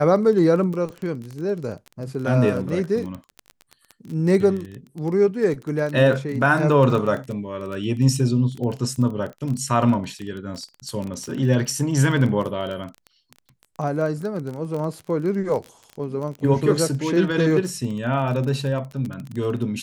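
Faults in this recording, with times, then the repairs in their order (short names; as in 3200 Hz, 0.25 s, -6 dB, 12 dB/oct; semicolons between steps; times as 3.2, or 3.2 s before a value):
crackle 22/s -27 dBFS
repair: de-click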